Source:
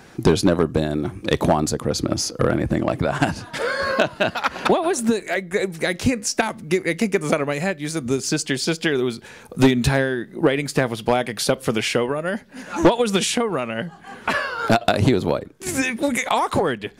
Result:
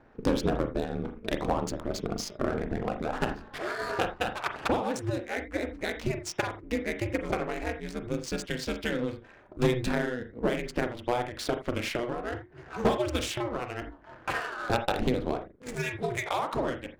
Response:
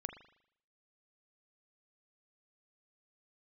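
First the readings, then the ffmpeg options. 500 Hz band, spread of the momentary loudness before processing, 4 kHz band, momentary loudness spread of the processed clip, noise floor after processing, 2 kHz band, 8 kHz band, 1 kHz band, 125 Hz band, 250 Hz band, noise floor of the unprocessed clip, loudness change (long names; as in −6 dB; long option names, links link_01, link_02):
−10.0 dB, 7 LU, −11.5 dB, 7 LU, −53 dBFS, −10.0 dB, −14.5 dB, −8.5 dB, −10.5 dB, −11.0 dB, −44 dBFS, −10.0 dB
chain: -filter_complex "[0:a]bandreject=frequency=60:width_type=h:width=6,bandreject=frequency=120:width_type=h:width=6,bandreject=frequency=180:width_type=h:width=6,bandreject=frequency=240:width_type=h:width=6,aeval=exprs='val(0)*sin(2*PI*120*n/s)':channel_layout=same,adynamicsmooth=sensitivity=5.5:basefreq=1300[link_01];[1:a]atrim=start_sample=2205,atrim=end_sample=3969[link_02];[link_01][link_02]afir=irnorm=-1:irlink=0,volume=-4.5dB"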